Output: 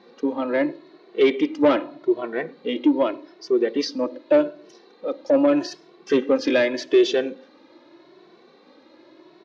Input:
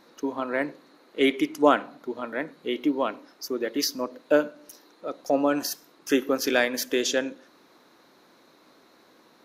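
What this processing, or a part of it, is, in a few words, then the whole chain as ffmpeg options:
barber-pole flanger into a guitar amplifier: -filter_complex "[0:a]asplit=2[link_01][link_02];[link_02]adelay=2.2,afreqshift=0.83[link_03];[link_01][link_03]amix=inputs=2:normalize=1,asoftclip=type=tanh:threshold=-20dB,highpass=77,equalizer=frequency=80:width_type=q:width=4:gain=-7,equalizer=frequency=350:width_type=q:width=4:gain=10,equalizer=frequency=560:width_type=q:width=4:gain=4,equalizer=frequency=1400:width_type=q:width=4:gain=-5,lowpass=frequency=4600:width=0.5412,lowpass=frequency=4600:width=1.3066,volume=6dB"

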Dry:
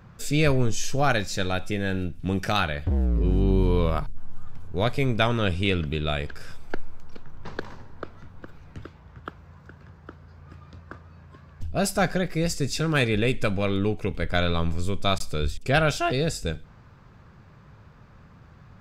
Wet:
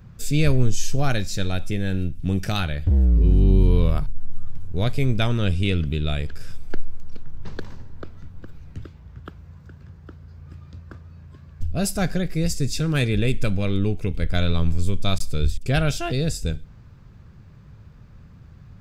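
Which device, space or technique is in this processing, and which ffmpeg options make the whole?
smiley-face EQ: -af "lowshelf=frequency=160:gain=8,equalizer=frequency=1000:width_type=o:width=2.1:gain=-6.5,highshelf=frequency=7900:gain=4.5"

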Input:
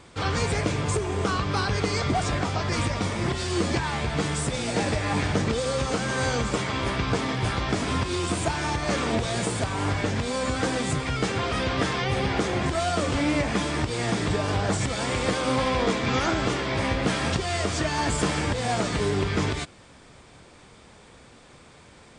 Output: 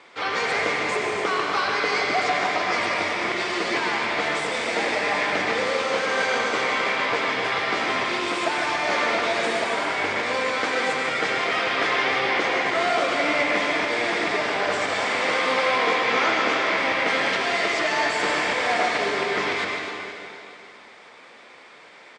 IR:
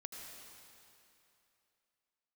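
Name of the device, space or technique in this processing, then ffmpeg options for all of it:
station announcement: -filter_complex "[0:a]highpass=470,lowpass=4500,equalizer=frequency=2100:width_type=o:width=0.39:gain=6,aecho=1:1:148.7|262.4:0.282|0.282[link_01];[1:a]atrim=start_sample=2205[link_02];[link_01][link_02]afir=irnorm=-1:irlink=0,volume=8dB"

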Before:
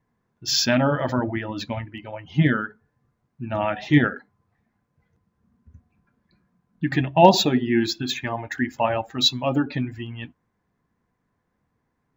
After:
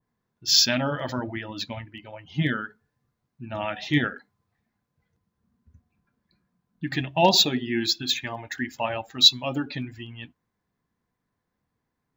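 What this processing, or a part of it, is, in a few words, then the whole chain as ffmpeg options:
presence and air boost: -af "equalizer=frequency=4100:width_type=o:width=1.1:gain=5.5,highshelf=frequency=9200:gain=6.5,adynamicequalizer=threshold=0.0251:dfrequency=1800:dqfactor=0.7:tfrequency=1800:tqfactor=0.7:attack=5:release=100:ratio=0.375:range=2.5:mode=boostabove:tftype=highshelf,volume=-6.5dB"

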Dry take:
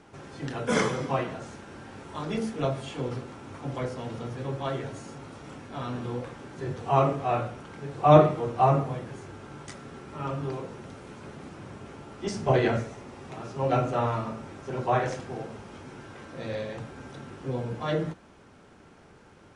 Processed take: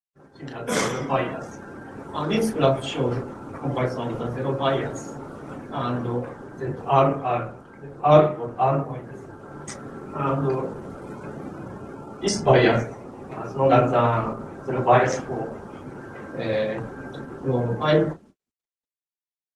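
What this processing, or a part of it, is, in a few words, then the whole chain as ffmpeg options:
video call: -filter_complex "[0:a]asettb=1/sr,asplit=3[link_01][link_02][link_03];[link_01]atrim=end=3.894[link_04];[link_02]atrim=start=3.89:end=5.37,asetpts=PTS-STARTPTS,afade=type=in:duration=0.004:curve=qsin,afade=type=out:start_time=1.476:duration=0.004:curve=qsin,highpass=frequency=86:poles=1[link_05];[link_03]atrim=start=5.366[link_06];[link_04][link_05]acrossfade=duration=0.004:curve1=hsin:curve2=qsin[link_07];[link_07][link_06]acrossfade=duration=0.004:curve1=qsin:curve2=hsin,afftdn=noise_reduction=19:noise_floor=-46,highpass=frequency=140:poles=1,aemphasis=mode=production:type=50fm,aecho=1:1:15|33:0.178|0.282,dynaudnorm=framelen=180:gausssize=11:maxgain=11dB,agate=range=-59dB:threshold=-45dB:ratio=16:detection=peak,volume=-1dB" -ar 48000 -c:a libopus -b:a 16k

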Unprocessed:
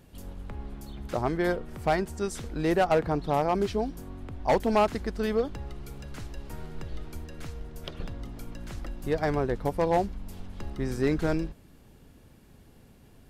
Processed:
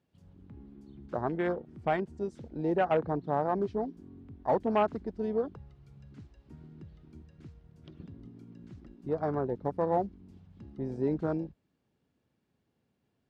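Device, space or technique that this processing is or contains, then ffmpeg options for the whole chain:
over-cleaned archive recording: -af "highpass=110,lowpass=5700,afwtdn=0.0251,volume=-3.5dB"

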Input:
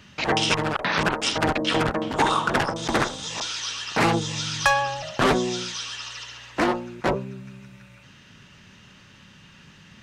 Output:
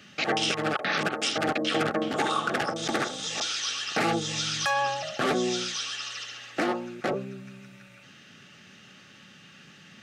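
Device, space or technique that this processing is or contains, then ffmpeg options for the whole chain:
PA system with an anti-feedback notch: -af "highpass=180,asuperstop=centerf=980:order=12:qfactor=5.7,alimiter=limit=-15.5dB:level=0:latency=1:release=153"

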